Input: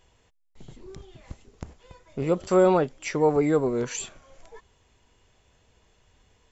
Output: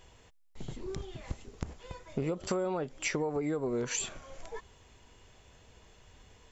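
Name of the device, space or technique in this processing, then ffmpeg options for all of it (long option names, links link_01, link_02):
serial compression, leveller first: -af "acompressor=threshold=-25dB:ratio=3,acompressor=threshold=-34dB:ratio=8,volume=4.5dB"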